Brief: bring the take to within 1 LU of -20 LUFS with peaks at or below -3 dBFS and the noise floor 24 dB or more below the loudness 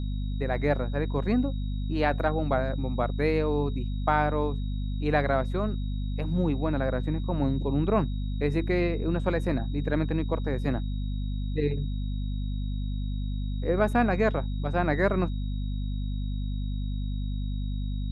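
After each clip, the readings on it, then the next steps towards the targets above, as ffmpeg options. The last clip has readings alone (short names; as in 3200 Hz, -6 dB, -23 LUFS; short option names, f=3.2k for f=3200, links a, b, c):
hum 50 Hz; harmonics up to 250 Hz; hum level -27 dBFS; steady tone 3800 Hz; tone level -51 dBFS; loudness -28.5 LUFS; peak -9.5 dBFS; loudness target -20.0 LUFS
-> -af "bandreject=f=50:t=h:w=4,bandreject=f=100:t=h:w=4,bandreject=f=150:t=h:w=4,bandreject=f=200:t=h:w=4,bandreject=f=250:t=h:w=4"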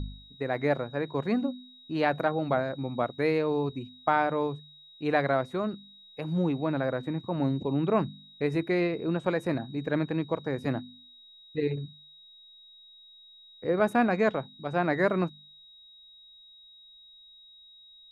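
hum none; steady tone 3800 Hz; tone level -51 dBFS
-> -af "bandreject=f=3.8k:w=30"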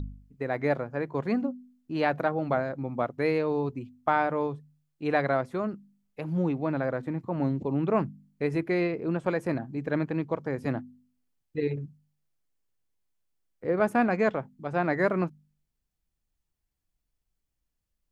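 steady tone none; loudness -29.0 LUFS; peak -11.0 dBFS; loudness target -20.0 LUFS
-> -af "volume=9dB,alimiter=limit=-3dB:level=0:latency=1"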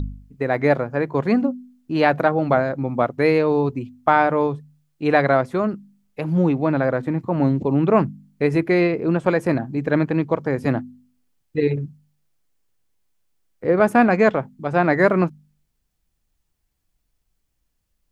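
loudness -20.5 LUFS; peak -3.0 dBFS; noise floor -73 dBFS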